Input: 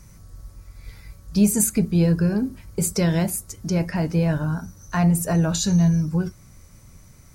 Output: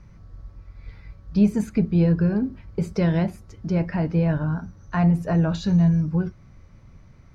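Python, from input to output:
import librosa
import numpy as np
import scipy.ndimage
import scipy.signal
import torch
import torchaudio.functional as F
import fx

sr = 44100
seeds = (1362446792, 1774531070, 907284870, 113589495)

y = fx.air_absorb(x, sr, metres=270.0)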